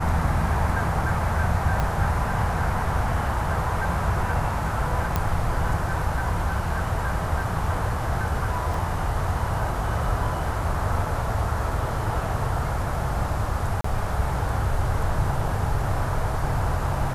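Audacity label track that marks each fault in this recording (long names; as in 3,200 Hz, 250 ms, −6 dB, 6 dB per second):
1.800000	1.800000	click −12 dBFS
5.160000	5.160000	click −9 dBFS
8.740000	8.740000	drop-out 2.7 ms
13.810000	13.840000	drop-out 34 ms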